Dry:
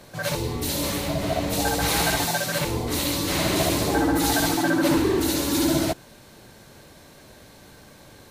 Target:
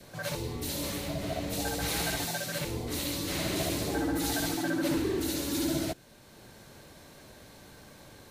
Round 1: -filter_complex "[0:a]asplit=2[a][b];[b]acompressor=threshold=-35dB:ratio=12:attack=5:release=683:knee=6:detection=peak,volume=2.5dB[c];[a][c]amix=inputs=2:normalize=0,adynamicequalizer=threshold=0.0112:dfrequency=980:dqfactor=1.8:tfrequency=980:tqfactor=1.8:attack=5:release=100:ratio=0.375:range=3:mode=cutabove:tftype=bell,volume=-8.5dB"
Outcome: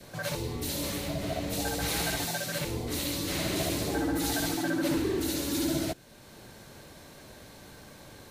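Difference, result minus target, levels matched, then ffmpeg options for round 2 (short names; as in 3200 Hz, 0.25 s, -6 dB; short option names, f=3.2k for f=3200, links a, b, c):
compressor: peak gain reduction -10 dB
-filter_complex "[0:a]asplit=2[a][b];[b]acompressor=threshold=-46dB:ratio=12:attack=5:release=683:knee=6:detection=peak,volume=2.5dB[c];[a][c]amix=inputs=2:normalize=0,adynamicequalizer=threshold=0.0112:dfrequency=980:dqfactor=1.8:tfrequency=980:tqfactor=1.8:attack=5:release=100:ratio=0.375:range=3:mode=cutabove:tftype=bell,volume=-8.5dB"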